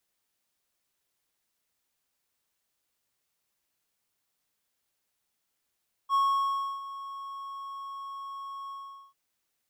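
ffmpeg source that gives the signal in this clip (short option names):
-f lavfi -i "aevalsrc='0.112*(1-4*abs(mod(1100*t+0.25,1)-0.5))':d=3.045:s=44100,afade=t=in:d=0.052,afade=t=out:st=0.052:d=0.661:silence=0.158,afade=t=out:st=2.61:d=0.435"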